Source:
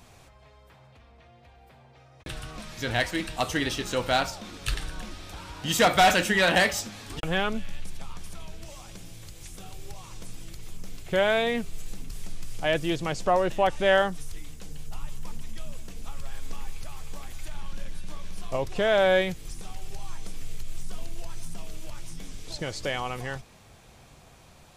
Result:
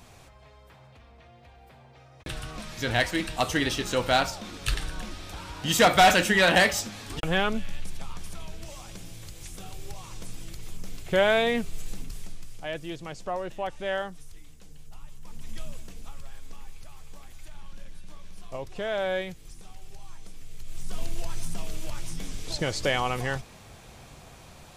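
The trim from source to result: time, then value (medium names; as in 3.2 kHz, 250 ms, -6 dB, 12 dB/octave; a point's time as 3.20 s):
12.01 s +1.5 dB
12.67 s -9 dB
15.21 s -9 dB
15.55 s +1 dB
16.44 s -7.5 dB
20.50 s -7.5 dB
21.02 s +4.5 dB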